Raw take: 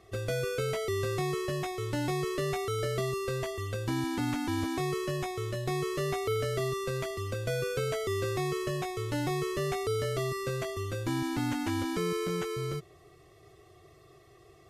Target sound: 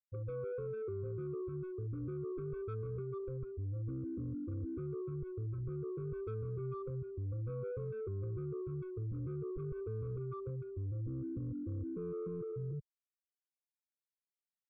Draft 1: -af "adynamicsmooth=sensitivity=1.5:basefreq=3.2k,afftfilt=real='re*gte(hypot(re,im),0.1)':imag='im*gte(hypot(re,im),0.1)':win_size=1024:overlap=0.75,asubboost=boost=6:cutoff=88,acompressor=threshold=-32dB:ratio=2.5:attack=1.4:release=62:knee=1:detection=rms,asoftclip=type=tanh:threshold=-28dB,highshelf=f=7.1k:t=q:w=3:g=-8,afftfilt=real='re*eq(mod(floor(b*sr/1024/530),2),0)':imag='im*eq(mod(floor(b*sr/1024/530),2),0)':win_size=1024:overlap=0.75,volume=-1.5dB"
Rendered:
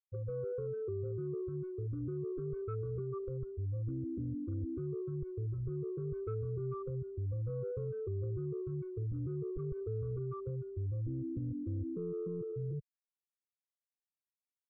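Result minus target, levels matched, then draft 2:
soft clip: distortion -8 dB
-af "adynamicsmooth=sensitivity=1.5:basefreq=3.2k,afftfilt=real='re*gte(hypot(re,im),0.1)':imag='im*gte(hypot(re,im),0.1)':win_size=1024:overlap=0.75,asubboost=boost=6:cutoff=88,acompressor=threshold=-32dB:ratio=2.5:attack=1.4:release=62:knee=1:detection=rms,asoftclip=type=tanh:threshold=-34dB,highshelf=f=7.1k:t=q:w=3:g=-8,afftfilt=real='re*eq(mod(floor(b*sr/1024/530),2),0)':imag='im*eq(mod(floor(b*sr/1024/530),2),0)':win_size=1024:overlap=0.75,volume=-1.5dB"

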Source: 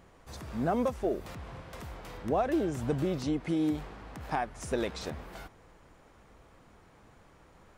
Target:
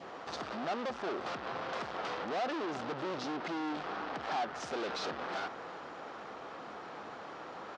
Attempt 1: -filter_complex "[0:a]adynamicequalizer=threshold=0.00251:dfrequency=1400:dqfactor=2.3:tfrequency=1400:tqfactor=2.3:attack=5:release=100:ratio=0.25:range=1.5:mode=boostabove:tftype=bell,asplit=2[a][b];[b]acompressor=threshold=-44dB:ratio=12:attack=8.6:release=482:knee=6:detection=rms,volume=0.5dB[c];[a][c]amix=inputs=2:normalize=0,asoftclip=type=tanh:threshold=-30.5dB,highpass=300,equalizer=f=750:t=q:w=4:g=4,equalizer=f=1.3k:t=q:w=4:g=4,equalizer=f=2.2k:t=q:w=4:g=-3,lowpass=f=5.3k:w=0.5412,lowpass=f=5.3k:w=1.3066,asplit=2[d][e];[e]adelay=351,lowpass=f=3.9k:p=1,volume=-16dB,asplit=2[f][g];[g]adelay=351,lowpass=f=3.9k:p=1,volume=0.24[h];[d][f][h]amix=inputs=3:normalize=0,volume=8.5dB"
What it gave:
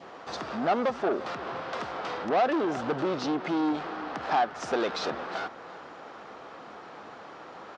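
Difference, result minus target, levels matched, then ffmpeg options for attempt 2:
compressor: peak gain reduction +7 dB; soft clip: distortion -7 dB
-filter_complex "[0:a]adynamicequalizer=threshold=0.00251:dfrequency=1400:dqfactor=2.3:tfrequency=1400:tqfactor=2.3:attack=5:release=100:ratio=0.25:range=1.5:mode=boostabove:tftype=bell,asplit=2[a][b];[b]acompressor=threshold=-36.5dB:ratio=12:attack=8.6:release=482:knee=6:detection=rms,volume=0.5dB[c];[a][c]amix=inputs=2:normalize=0,asoftclip=type=tanh:threshold=-42.5dB,highpass=300,equalizer=f=750:t=q:w=4:g=4,equalizer=f=1.3k:t=q:w=4:g=4,equalizer=f=2.2k:t=q:w=4:g=-3,lowpass=f=5.3k:w=0.5412,lowpass=f=5.3k:w=1.3066,asplit=2[d][e];[e]adelay=351,lowpass=f=3.9k:p=1,volume=-16dB,asplit=2[f][g];[g]adelay=351,lowpass=f=3.9k:p=1,volume=0.24[h];[d][f][h]amix=inputs=3:normalize=0,volume=8.5dB"

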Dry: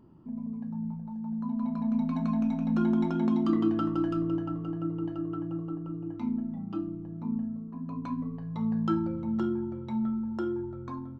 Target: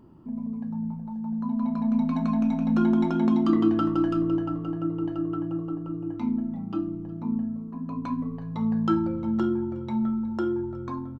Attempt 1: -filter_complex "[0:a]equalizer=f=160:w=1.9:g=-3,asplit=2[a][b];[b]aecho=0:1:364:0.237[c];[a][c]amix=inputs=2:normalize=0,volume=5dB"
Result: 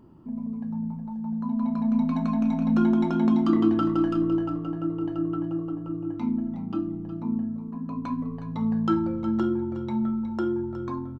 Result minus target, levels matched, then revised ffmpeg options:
echo-to-direct +10.5 dB
-filter_complex "[0:a]equalizer=f=160:w=1.9:g=-3,asplit=2[a][b];[b]aecho=0:1:364:0.0708[c];[a][c]amix=inputs=2:normalize=0,volume=5dB"

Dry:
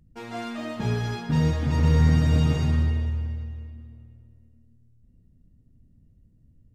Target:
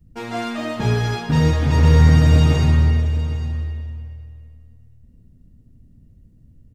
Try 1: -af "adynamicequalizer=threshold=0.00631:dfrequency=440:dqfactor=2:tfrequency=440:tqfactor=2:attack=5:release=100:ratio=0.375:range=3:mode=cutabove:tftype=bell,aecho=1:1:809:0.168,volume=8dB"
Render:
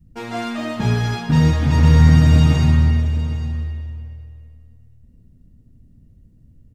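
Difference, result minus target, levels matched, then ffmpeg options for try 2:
500 Hz band -4.5 dB
-af "adynamicequalizer=threshold=0.00631:dfrequency=200:dqfactor=2:tfrequency=200:tqfactor=2:attack=5:release=100:ratio=0.375:range=3:mode=cutabove:tftype=bell,aecho=1:1:809:0.168,volume=8dB"

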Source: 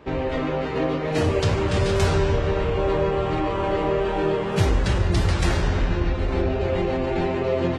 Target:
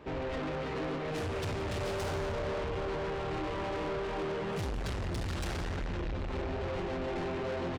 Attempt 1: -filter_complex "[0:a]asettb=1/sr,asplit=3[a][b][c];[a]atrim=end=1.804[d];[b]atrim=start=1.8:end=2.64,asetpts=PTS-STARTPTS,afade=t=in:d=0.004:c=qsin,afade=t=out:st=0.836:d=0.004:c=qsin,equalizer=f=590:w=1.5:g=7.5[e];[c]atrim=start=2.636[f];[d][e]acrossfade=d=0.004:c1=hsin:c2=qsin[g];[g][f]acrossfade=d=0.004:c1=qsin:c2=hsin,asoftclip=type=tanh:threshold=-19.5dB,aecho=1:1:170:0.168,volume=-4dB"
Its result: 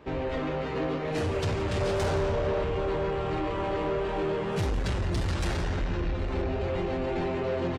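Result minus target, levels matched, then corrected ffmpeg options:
soft clip: distortion -6 dB
-filter_complex "[0:a]asettb=1/sr,asplit=3[a][b][c];[a]atrim=end=1.804[d];[b]atrim=start=1.8:end=2.64,asetpts=PTS-STARTPTS,afade=t=in:d=0.004:c=qsin,afade=t=out:st=0.836:d=0.004:c=qsin,equalizer=f=590:w=1.5:g=7.5[e];[c]atrim=start=2.636[f];[d][e]acrossfade=d=0.004:c1=hsin:c2=qsin[g];[g][f]acrossfade=d=0.004:c1=qsin:c2=hsin,asoftclip=type=tanh:threshold=-29dB,aecho=1:1:170:0.168,volume=-4dB"

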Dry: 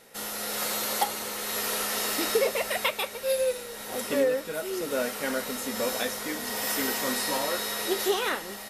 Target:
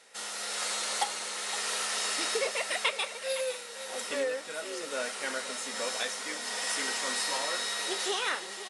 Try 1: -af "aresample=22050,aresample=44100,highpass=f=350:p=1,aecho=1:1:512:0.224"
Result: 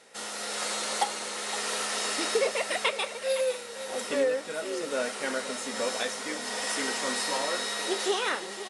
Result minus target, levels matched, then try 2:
250 Hz band +6.0 dB
-af "aresample=22050,aresample=44100,highpass=f=1.1k:p=1,aecho=1:1:512:0.224"

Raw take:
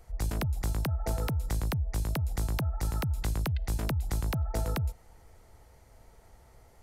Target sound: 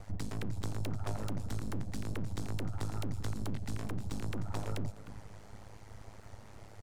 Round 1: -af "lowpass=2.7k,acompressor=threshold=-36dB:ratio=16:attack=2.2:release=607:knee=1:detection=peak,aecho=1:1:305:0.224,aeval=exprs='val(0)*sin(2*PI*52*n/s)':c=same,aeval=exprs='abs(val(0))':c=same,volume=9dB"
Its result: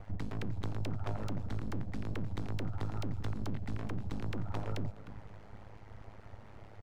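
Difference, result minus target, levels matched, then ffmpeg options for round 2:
8000 Hz band -10.0 dB
-af "lowpass=7.8k,acompressor=threshold=-36dB:ratio=16:attack=2.2:release=607:knee=1:detection=peak,aecho=1:1:305:0.224,aeval=exprs='val(0)*sin(2*PI*52*n/s)':c=same,aeval=exprs='abs(val(0))':c=same,volume=9dB"

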